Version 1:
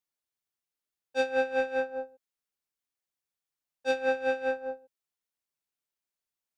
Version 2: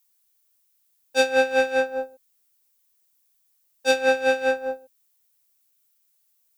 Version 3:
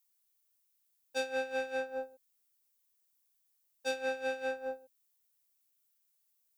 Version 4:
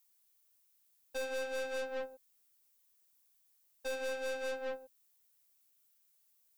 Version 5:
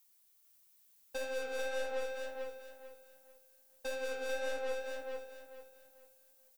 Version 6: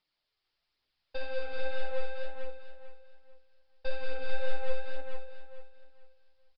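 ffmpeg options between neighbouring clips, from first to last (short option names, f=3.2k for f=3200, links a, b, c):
-af "aemphasis=mode=production:type=75kf,volume=7dB"
-af "acompressor=threshold=-25dB:ratio=3,volume=-8.5dB"
-af "aeval=exprs='(tanh(112*val(0)+0.4)-tanh(0.4))/112':c=same,volume=5.5dB"
-filter_complex "[0:a]acompressor=threshold=-44dB:ratio=2,flanger=delay=5.5:depth=7.9:regen=71:speed=1.5:shape=sinusoidal,asplit=2[a][b];[b]aecho=0:1:442|884|1326|1768:0.668|0.194|0.0562|0.0163[c];[a][c]amix=inputs=2:normalize=0,volume=8dB"
-af "aresample=11025,aresample=44100,aphaser=in_gain=1:out_gain=1:delay=2.8:decay=0.3:speed=1.2:type=triangular,asubboost=boost=10.5:cutoff=66"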